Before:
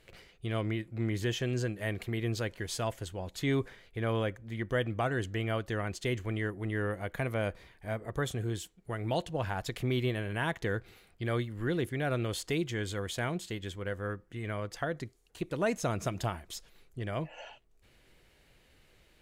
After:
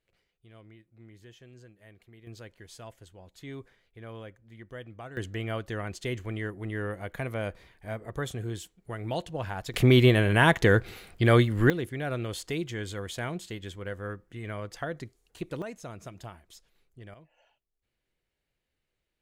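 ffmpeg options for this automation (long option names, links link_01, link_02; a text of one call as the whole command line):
ffmpeg -i in.wav -af "asetnsamples=nb_out_samples=441:pad=0,asendcmd='2.27 volume volume -12dB;5.17 volume volume -0.5dB;9.74 volume volume 12dB;11.7 volume volume -0.5dB;15.62 volume volume -10dB;17.14 volume volume -20dB',volume=-20dB" out.wav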